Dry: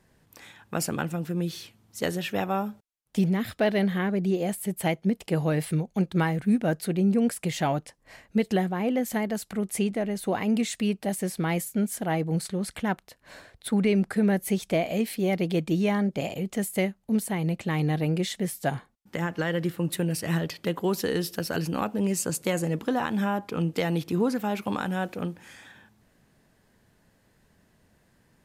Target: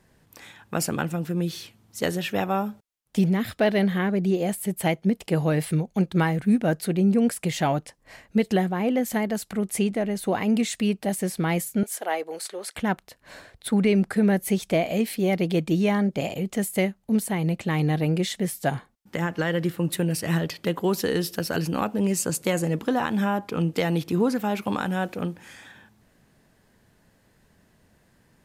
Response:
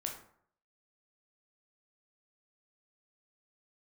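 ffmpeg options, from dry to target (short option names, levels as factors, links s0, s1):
-filter_complex "[0:a]asettb=1/sr,asplit=3[s0][s1][s2];[s0]atrim=end=11.834[s3];[s1]atrim=start=11.83:end=12.76,asetpts=PTS-STARTPTS,afade=t=in:d=0.004:c=qsin,afade=t=out:st=0.926:d=0.004:c=qsin,highpass=f=420:w=0.5412,highpass=f=420:w=1.3066[s4];[s2]atrim=start=12.756[s5];[s3][s4]acrossfade=d=0.004:c1=hsin:c2=qsin[s6];[s6][s5]acrossfade=d=0.004:c1=qsin:c2=hsin,volume=1.33"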